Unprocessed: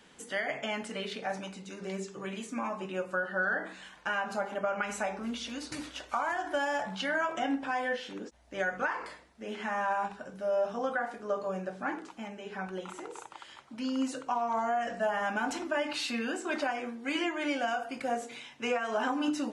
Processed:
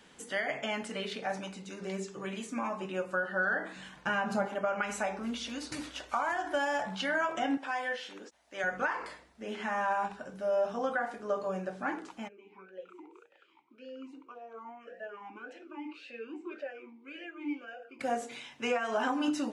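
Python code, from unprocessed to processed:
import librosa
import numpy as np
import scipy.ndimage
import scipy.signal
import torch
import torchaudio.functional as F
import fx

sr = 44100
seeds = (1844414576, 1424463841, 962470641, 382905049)

y = fx.peak_eq(x, sr, hz=140.0, db=11.5, octaves=2.0, at=(3.76, 4.48))
y = fx.highpass(y, sr, hz=710.0, slope=6, at=(7.57, 8.64))
y = fx.vowel_sweep(y, sr, vowels='e-u', hz=1.8, at=(12.27, 17.99), fade=0.02)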